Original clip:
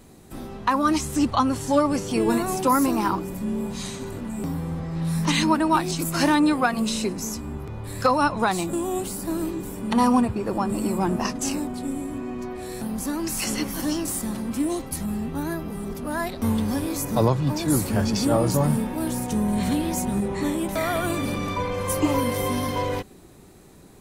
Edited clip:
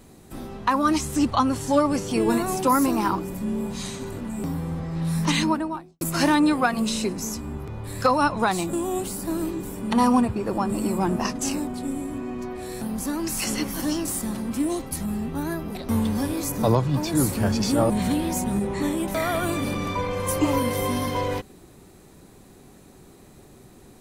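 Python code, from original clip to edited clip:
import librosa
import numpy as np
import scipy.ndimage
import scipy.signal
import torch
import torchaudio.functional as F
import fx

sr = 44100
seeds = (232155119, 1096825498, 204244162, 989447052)

y = fx.studio_fade_out(x, sr, start_s=5.29, length_s=0.72)
y = fx.edit(y, sr, fx.cut(start_s=15.75, length_s=0.53),
    fx.cut(start_s=18.43, length_s=1.08), tone=tone)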